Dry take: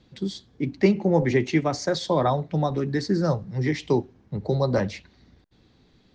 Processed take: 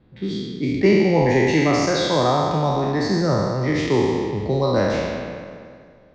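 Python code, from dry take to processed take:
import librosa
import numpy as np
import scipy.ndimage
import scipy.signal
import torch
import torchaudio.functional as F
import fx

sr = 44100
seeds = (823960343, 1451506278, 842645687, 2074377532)

y = fx.spec_trails(x, sr, decay_s=2.13)
y = fx.env_lowpass(y, sr, base_hz=1800.0, full_db=-14.0)
y = fx.rev_schroeder(y, sr, rt60_s=1.9, comb_ms=28, drr_db=14.0)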